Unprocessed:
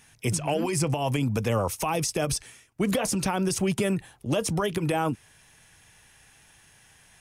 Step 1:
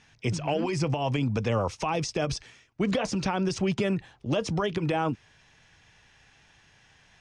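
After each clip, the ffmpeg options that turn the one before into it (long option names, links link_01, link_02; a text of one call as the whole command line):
ffmpeg -i in.wav -af "lowpass=frequency=5800:width=0.5412,lowpass=frequency=5800:width=1.3066,volume=-1dB" out.wav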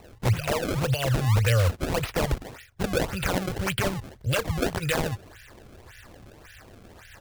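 ffmpeg -i in.wav -filter_complex "[0:a]firequalizer=gain_entry='entry(100,0);entry(150,-15);entry(280,-29);entry(510,-9);entry(910,-27);entry(1500,-1);entry(3100,-4);entry(5300,-19);entry(11000,-6)':delay=0.05:min_phase=1,asplit=2[link_01][link_02];[link_02]alimiter=level_in=6dB:limit=-24dB:level=0:latency=1:release=161,volume=-6dB,volume=-1.5dB[link_03];[link_01][link_03]amix=inputs=2:normalize=0,acrusher=samples=27:mix=1:aa=0.000001:lfo=1:lforange=43.2:lforate=1.8,volume=9dB" out.wav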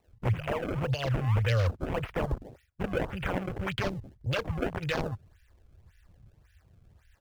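ffmpeg -i in.wav -af "afwtdn=0.0178,volume=-4.5dB" out.wav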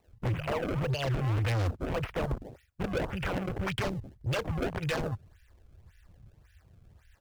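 ffmpeg -i in.wav -af "asoftclip=type=hard:threshold=-27.5dB,volume=1.5dB" out.wav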